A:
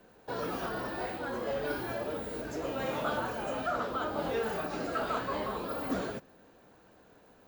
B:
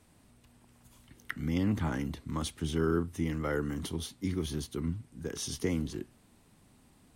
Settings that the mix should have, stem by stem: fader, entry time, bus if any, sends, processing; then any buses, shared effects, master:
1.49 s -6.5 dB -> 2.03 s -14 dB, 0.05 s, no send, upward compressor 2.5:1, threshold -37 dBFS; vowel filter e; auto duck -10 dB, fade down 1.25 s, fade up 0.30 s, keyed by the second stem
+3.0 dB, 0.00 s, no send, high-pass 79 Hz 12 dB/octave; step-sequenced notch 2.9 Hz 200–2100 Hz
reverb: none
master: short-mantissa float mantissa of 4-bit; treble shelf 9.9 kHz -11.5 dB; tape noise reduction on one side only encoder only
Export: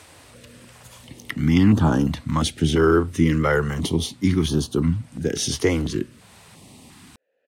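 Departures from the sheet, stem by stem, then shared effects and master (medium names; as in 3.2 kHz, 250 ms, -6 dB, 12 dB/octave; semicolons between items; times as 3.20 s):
stem B +3.0 dB -> +15.0 dB; master: missing short-mantissa float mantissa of 4-bit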